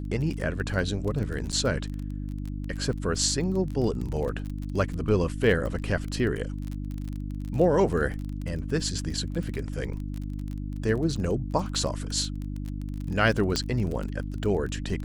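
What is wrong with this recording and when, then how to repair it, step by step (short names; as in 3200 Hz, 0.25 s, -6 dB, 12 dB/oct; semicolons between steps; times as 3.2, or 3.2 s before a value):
crackle 24/s -31 dBFS
hum 50 Hz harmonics 6 -33 dBFS
1.52–1.53 gap 6.6 ms
13.56 pop -11 dBFS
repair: de-click; de-hum 50 Hz, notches 6; interpolate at 1.52, 6.6 ms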